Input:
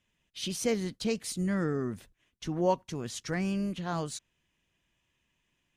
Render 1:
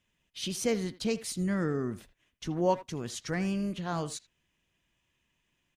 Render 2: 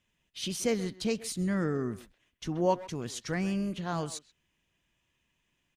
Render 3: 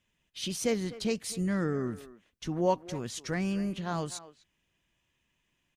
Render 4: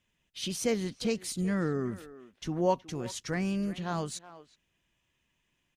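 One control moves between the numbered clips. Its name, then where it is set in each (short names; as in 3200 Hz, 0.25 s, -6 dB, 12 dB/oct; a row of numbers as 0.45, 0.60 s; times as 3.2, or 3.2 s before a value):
speakerphone echo, time: 80, 130, 250, 370 ms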